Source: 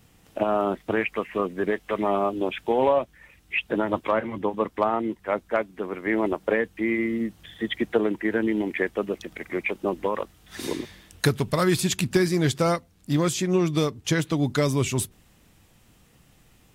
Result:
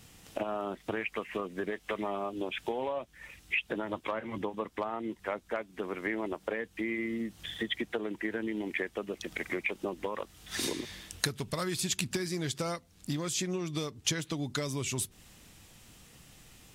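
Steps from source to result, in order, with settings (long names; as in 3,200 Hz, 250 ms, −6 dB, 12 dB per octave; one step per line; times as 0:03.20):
downward compressor 6 to 1, threshold −32 dBFS, peak gain reduction 16 dB
parametric band 6,100 Hz +7 dB 2.7 octaves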